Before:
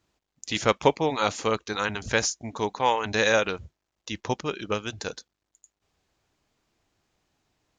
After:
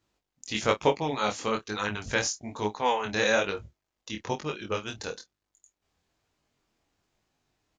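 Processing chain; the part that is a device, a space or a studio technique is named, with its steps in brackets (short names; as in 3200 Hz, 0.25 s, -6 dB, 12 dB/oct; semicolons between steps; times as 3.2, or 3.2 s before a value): double-tracked vocal (doubler 28 ms -12 dB; chorus 1.1 Hz, delay 19 ms, depth 5.4 ms)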